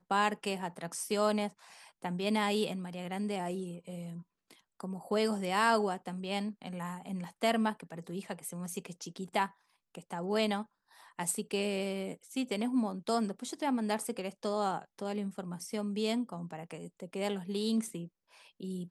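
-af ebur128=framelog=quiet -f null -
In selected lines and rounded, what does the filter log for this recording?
Integrated loudness:
  I:         -34.7 LUFS
  Threshold: -45.2 LUFS
Loudness range:
  LRA:         3.4 LU
  Threshold: -55.2 LUFS
  LRA low:   -36.8 LUFS
  LRA high:  -33.5 LUFS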